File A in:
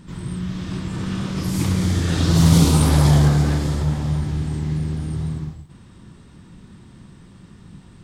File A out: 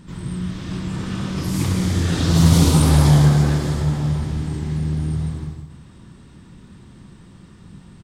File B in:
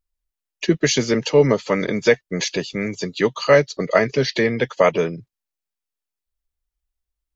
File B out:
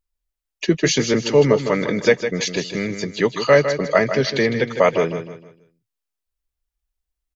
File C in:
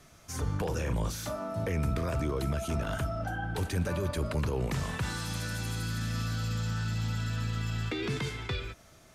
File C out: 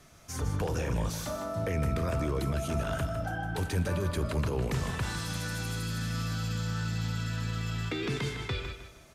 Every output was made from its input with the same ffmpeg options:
ffmpeg -i in.wav -af "aecho=1:1:156|312|468|624:0.355|0.117|0.0386|0.0128" out.wav

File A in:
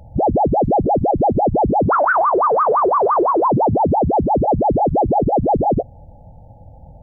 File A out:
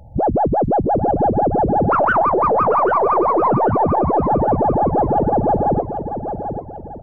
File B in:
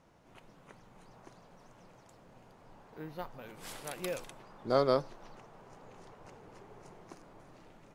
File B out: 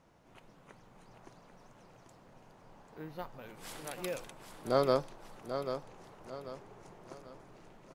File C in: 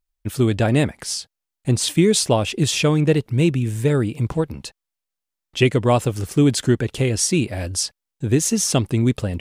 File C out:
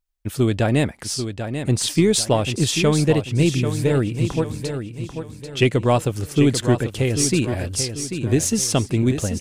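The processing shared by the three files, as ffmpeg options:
ffmpeg -i in.wav -af "aeval=exprs='0.891*(cos(1*acos(clip(val(0)/0.891,-1,1)))-cos(1*PI/2))+0.0158*(cos(6*acos(clip(val(0)/0.891,-1,1)))-cos(6*PI/2))':channel_layout=same,aecho=1:1:790|1580|2370|3160:0.376|0.143|0.0543|0.0206,volume=-1dB" out.wav

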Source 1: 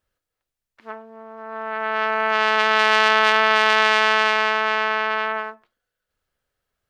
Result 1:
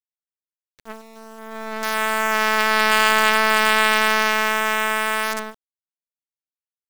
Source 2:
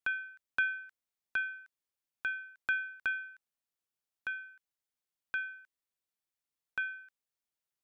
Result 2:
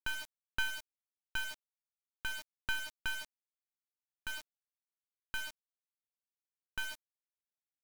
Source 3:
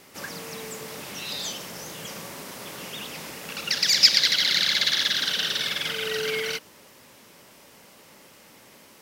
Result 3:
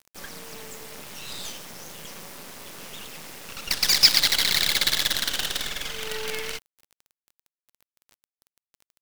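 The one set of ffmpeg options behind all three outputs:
ffmpeg -i in.wav -af "acrusher=bits=4:dc=4:mix=0:aa=0.000001" out.wav

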